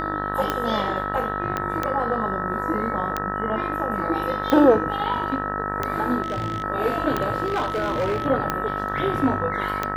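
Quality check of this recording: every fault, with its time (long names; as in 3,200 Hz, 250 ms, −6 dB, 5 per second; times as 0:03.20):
mains buzz 50 Hz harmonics 38 −30 dBFS
scratch tick 45 rpm −9 dBFS
whistle 1,300 Hz −28 dBFS
0:01.57: click −11 dBFS
0:06.22–0:06.64: clipping −21.5 dBFS
0:07.46–0:08.27: clipping −19.5 dBFS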